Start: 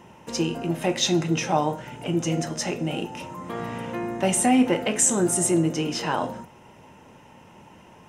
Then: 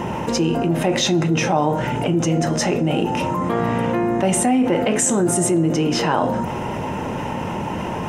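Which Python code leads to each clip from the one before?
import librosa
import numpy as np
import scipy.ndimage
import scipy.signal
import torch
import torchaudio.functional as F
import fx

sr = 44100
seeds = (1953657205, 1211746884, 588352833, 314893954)

y = fx.high_shelf(x, sr, hz=2200.0, db=-8.5)
y = fx.env_flatten(y, sr, amount_pct=70)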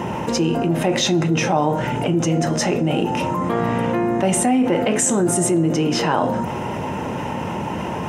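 y = scipy.signal.sosfilt(scipy.signal.butter(2, 61.0, 'highpass', fs=sr, output='sos'), x)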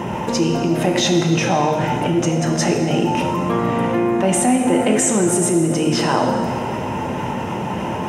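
y = fx.rev_plate(x, sr, seeds[0], rt60_s=2.1, hf_ratio=0.95, predelay_ms=0, drr_db=3.5)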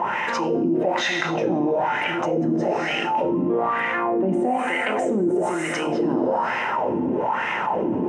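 y = fx.wah_lfo(x, sr, hz=1.1, low_hz=280.0, high_hz=2000.0, q=3.5)
y = fx.env_flatten(y, sr, amount_pct=70)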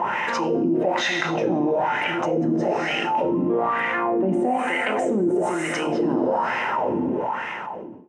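y = fx.fade_out_tail(x, sr, length_s=1.08)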